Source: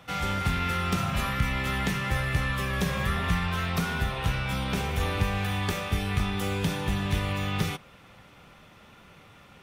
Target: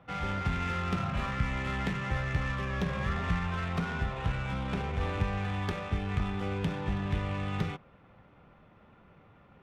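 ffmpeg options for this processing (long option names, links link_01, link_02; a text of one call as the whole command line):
ffmpeg -i in.wav -af "adynamicsmooth=sensitivity=2.5:basefreq=1600,volume=-3.5dB" out.wav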